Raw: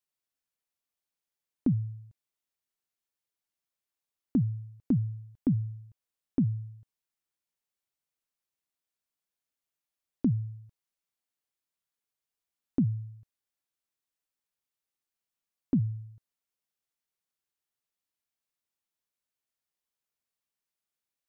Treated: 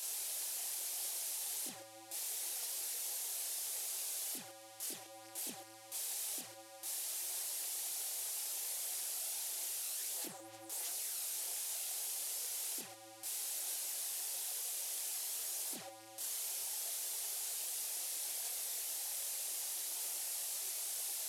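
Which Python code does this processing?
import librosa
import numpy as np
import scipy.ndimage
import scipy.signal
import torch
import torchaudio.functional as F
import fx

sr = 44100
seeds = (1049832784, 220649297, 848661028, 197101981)

y = fx.delta_mod(x, sr, bps=64000, step_db=-27.5)
y = np.diff(y, prepend=0.0)
y = fx.chorus_voices(y, sr, voices=6, hz=0.79, base_ms=26, depth_ms=3.0, mix_pct=55)
y = fx.band_shelf(y, sr, hz=520.0, db=13.5, octaves=1.7)
y = F.gain(torch.from_numpy(y), -2.5).numpy()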